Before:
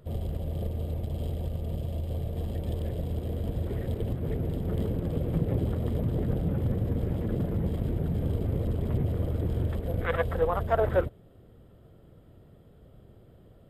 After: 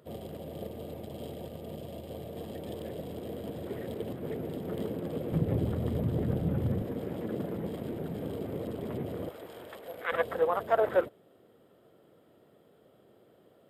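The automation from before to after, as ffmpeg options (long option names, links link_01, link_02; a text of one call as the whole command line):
ffmpeg -i in.wav -af "asetnsamples=nb_out_samples=441:pad=0,asendcmd='5.32 highpass f 97;6.82 highpass f 240;9.29 highpass f 680;10.12 highpass f 310',highpass=230" out.wav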